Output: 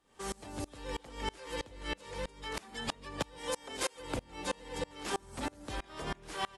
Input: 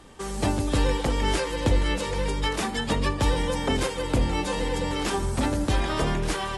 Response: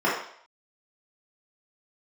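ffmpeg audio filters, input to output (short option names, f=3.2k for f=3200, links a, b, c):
-filter_complex "[0:a]asettb=1/sr,asplit=3[a][b][c];[a]atrim=end=3.384[d];[b]atrim=start=3.38:end=4,asetpts=PTS-STARTPTS,afade=t=in:d=0.004:c=qsin,afade=t=out:st=0.616:d=0.004:c=qsin,bass=f=250:g=-11,treble=f=4k:g=4[e];[c]atrim=start=3.996[f];[d][e]acrossfade=d=0.004:c1=hsin:c2=qsin[g];[g][f]acrossfade=d=0.004:c1=qsin:c2=hsin,acompressor=threshold=-29dB:ratio=5,lowshelf=f=280:g=-8,aecho=1:1:374:0.0708,aeval=exprs='val(0)*pow(10,-28*if(lt(mod(-3.1*n/s,1),2*abs(-3.1)/1000),1-mod(-3.1*n/s,1)/(2*abs(-3.1)/1000),(mod(-3.1*n/s,1)-2*abs(-3.1)/1000)/(1-2*abs(-3.1)/1000))/20)':c=same,volume=3dB"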